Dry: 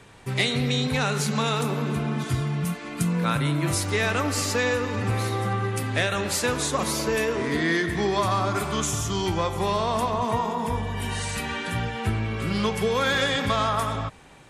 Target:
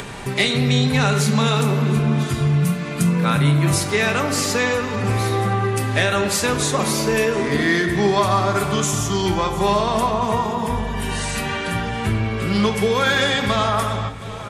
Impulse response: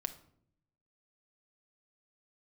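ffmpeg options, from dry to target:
-filter_complex "[0:a]aecho=1:1:721|1442|2163|2884:0.0794|0.0437|0.024|0.0132[link_01];[1:a]atrim=start_sample=2205,asetrate=48510,aresample=44100[link_02];[link_01][link_02]afir=irnorm=-1:irlink=0,acompressor=mode=upward:threshold=-28dB:ratio=2.5,volume=6.5dB"

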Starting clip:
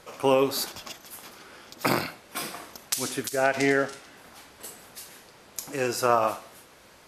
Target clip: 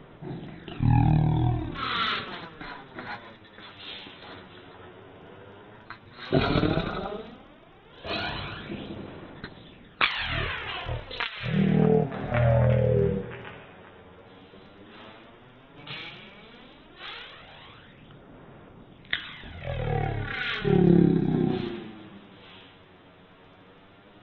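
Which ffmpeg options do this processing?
ffmpeg -i in.wav -af "equalizer=frequency=220:width=2.3:gain=-10,aphaser=in_gain=1:out_gain=1:delay=3.2:decay=0.49:speed=0.37:type=sinusoidal,asetrate=12877,aresample=44100" out.wav

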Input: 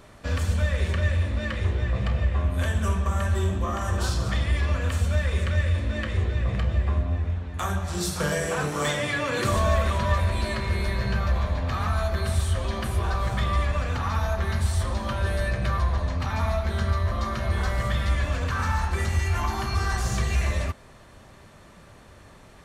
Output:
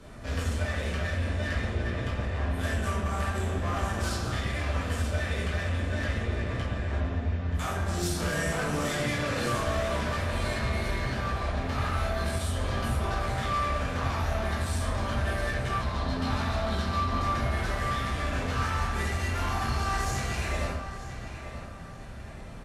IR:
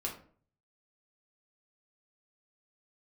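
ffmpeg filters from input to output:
-filter_complex "[0:a]asettb=1/sr,asplit=3[link_01][link_02][link_03];[link_01]atrim=end=15.814[link_04];[link_02]atrim=start=15.81:end=17.18,asetpts=PTS-STARTPTS,afade=type=in:duration=0.004:curve=qsin,afade=type=out:start_time=1.366:duration=0.004:curve=qsin,equalizer=frequency=250:width_type=o:width=1:gain=7,equalizer=frequency=500:width_type=o:width=1:gain=-5,equalizer=frequency=1000:width_type=o:width=1:gain=4,equalizer=frequency=2000:width_type=o:width=1:gain=-5,equalizer=frequency=4000:width_type=o:width=1:gain=10,equalizer=frequency=8000:width_type=o:width=1:gain=-10[link_05];[link_03]atrim=start=17.176[link_06];[link_04][link_05]acrossfade=duration=0.004:curve1=hsin:curve2=qsin[link_07];[link_07][link_06]acrossfade=duration=0.004:curve1=qsin:curve2=hsin,acrossover=split=210|980[link_08][link_09][link_10];[link_08]acompressor=threshold=-33dB:ratio=5[link_11];[link_09]tremolo=f=67:d=0.75[link_12];[link_10]flanger=delay=18.5:depth=2.9:speed=0.77[link_13];[link_11][link_12][link_13]amix=inputs=3:normalize=0,asoftclip=type=hard:threshold=-33dB,asplit=2[link_14][link_15];[link_15]adelay=929,lowpass=frequency=4600:poles=1,volume=-10.5dB,asplit=2[link_16][link_17];[link_17]adelay=929,lowpass=frequency=4600:poles=1,volume=0.38,asplit=2[link_18][link_19];[link_19]adelay=929,lowpass=frequency=4600:poles=1,volume=0.38,asplit=2[link_20][link_21];[link_21]adelay=929,lowpass=frequency=4600:poles=1,volume=0.38[link_22];[link_14][link_16][link_18][link_20][link_22]amix=inputs=5:normalize=0[link_23];[1:a]atrim=start_sample=2205,asetrate=25578,aresample=44100[link_24];[link_23][link_24]afir=irnorm=-1:irlink=0" -ar 48000 -c:a wmav2 -b:a 128k

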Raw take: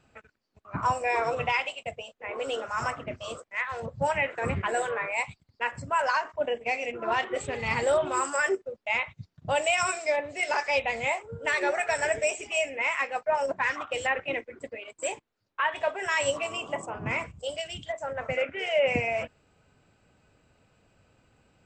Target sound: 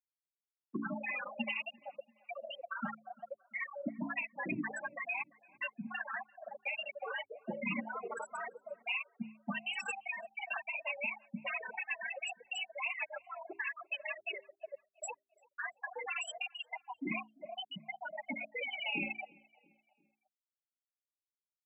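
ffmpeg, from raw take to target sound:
ffmpeg -i in.wav -filter_complex "[0:a]afftfilt=real='re*gte(hypot(re,im),0.141)':imag='im*gte(hypot(re,im),0.141)':win_size=1024:overlap=0.75,bandreject=frequency=60:width_type=h:width=6,bandreject=frequency=120:width_type=h:width=6,bandreject=frequency=180:width_type=h:width=6,bandreject=frequency=240:width_type=h:width=6,bandreject=frequency=300:width_type=h:width=6,afftfilt=real='re*lt(hypot(re,im),0.158)':imag='im*lt(hypot(re,im),0.158)':win_size=1024:overlap=0.75,equalizer=frequency=125:width_type=o:width=0.33:gain=6,equalizer=frequency=200:width_type=o:width=0.33:gain=11,equalizer=frequency=1600:width_type=o:width=0.33:gain=7,equalizer=frequency=2500:width_type=o:width=0.33:gain=11,equalizer=frequency=4000:width_type=o:width=0.33:gain=-3,acrossover=split=130[link_01][link_02];[link_02]acompressor=threshold=-48dB:ratio=2[link_03];[link_01][link_03]amix=inputs=2:normalize=0,afreqshift=98,asplit=2[link_04][link_05];[link_05]adelay=342,lowpass=frequency=2100:poles=1,volume=-24dB,asplit=2[link_06][link_07];[link_07]adelay=342,lowpass=frequency=2100:poles=1,volume=0.54,asplit=2[link_08][link_09];[link_09]adelay=342,lowpass=frequency=2100:poles=1,volume=0.54[link_10];[link_04][link_06][link_08][link_10]amix=inputs=4:normalize=0,volume=4.5dB" out.wav

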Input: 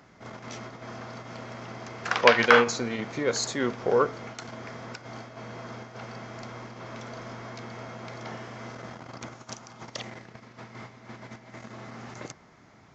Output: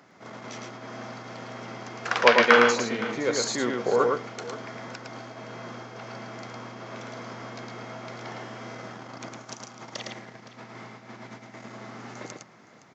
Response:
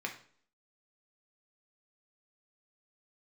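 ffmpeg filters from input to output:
-filter_complex "[0:a]highpass=160,asplit=2[link_01][link_02];[link_02]aecho=0:1:109|516:0.668|0.15[link_03];[link_01][link_03]amix=inputs=2:normalize=0"

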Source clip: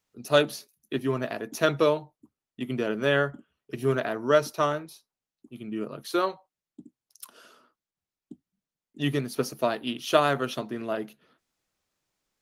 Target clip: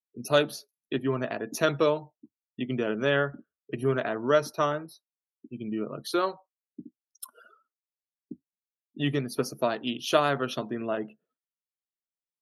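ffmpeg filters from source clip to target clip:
ffmpeg -i in.wav -filter_complex "[0:a]afftdn=noise_reduction=36:noise_floor=-47,asplit=2[link_01][link_02];[link_02]acompressor=threshold=-36dB:ratio=6,volume=2dB[link_03];[link_01][link_03]amix=inputs=2:normalize=0,volume=-3dB" out.wav

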